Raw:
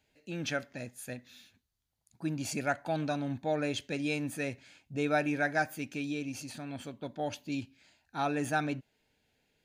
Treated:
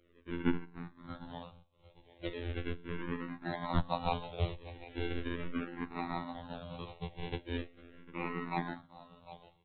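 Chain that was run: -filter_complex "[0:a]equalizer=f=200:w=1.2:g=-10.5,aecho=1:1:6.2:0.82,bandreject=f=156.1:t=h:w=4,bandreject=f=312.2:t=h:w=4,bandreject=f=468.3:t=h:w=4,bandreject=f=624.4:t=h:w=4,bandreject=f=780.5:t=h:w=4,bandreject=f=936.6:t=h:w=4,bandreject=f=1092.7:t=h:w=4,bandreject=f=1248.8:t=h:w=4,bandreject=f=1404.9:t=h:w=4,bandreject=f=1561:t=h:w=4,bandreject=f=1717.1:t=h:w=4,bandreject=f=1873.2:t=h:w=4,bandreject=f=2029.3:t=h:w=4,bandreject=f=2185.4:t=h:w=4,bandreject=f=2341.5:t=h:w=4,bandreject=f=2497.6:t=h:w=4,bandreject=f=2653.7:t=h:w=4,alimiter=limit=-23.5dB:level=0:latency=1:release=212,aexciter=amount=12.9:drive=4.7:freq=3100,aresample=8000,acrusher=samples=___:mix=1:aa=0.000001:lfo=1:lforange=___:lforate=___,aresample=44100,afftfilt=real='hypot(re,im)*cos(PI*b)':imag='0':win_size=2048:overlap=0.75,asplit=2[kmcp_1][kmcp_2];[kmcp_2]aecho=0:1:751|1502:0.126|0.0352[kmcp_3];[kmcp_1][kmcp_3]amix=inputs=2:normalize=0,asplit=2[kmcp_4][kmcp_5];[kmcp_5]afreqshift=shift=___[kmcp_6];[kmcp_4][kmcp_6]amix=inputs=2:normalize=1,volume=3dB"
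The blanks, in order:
9, 9, 0.45, -0.39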